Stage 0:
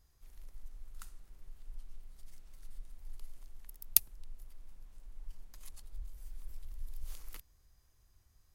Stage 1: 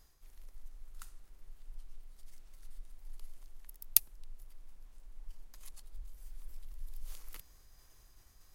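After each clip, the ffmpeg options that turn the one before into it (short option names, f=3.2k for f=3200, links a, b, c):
-af "equalizer=f=84:w=0.7:g=-8.5,areverse,acompressor=mode=upward:threshold=-48dB:ratio=2.5,areverse"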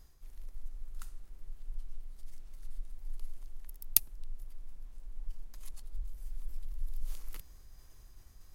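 -af "lowshelf=f=360:g=7.5"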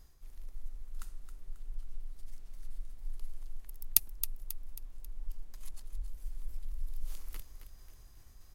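-af "aecho=1:1:270|540|810|1080|1350:0.299|0.128|0.0552|0.0237|0.0102"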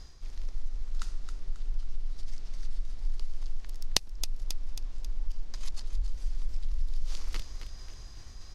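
-af "aeval=exprs='(mod(1.88*val(0)+1,2)-1)/1.88':c=same,acompressor=threshold=-33dB:ratio=3,lowpass=f=5.3k:t=q:w=1.8,volume=10.5dB"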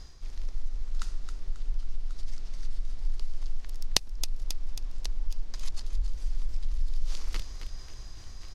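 -af "aecho=1:1:1089:0.141,volume=1.5dB"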